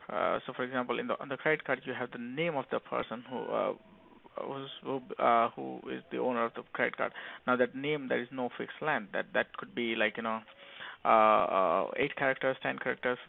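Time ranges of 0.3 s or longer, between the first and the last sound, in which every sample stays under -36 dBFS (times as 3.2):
3.74–4.37
10.39–10.8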